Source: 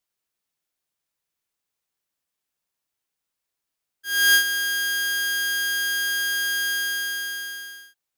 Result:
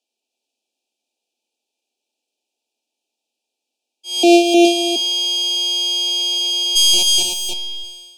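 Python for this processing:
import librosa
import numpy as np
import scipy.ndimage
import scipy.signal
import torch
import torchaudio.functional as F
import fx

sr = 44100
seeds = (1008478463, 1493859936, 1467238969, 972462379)

p1 = fx.sample_sort(x, sr, block=128, at=(4.23, 4.65))
p2 = scipy.signal.sosfilt(scipy.signal.cheby1(8, 1.0, 220.0, 'highpass', fs=sr, output='sos'), p1)
p3 = fx.rider(p2, sr, range_db=3, speed_s=0.5)
p4 = p2 + F.gain(torch.from_numpy(p3), 1.0).numpy()
p5 = fx.quant_companded(p4, sr, bits=2, at=(6.75, 7.52), fade=0.02)
p6 = fx.brickwall_bandstop(p5, sr, low_hz=920.0, high_hz=2300.0)
p7 = fx.air_absorb(p6, sr, metres=68.0)
p8 = p7 + 10.0 ** (-4.0 / 20.0) * np.pad(p7, (int(308 * sr / 1000.0), 0))[:len(p7)]
p9 = fx.rev_schroeder(p8, sr, rt60_s=0.35, comb_ms=25, drr_db=17.5)
y = F.gain(torch.from_numpy(p9), 4.0).numpy()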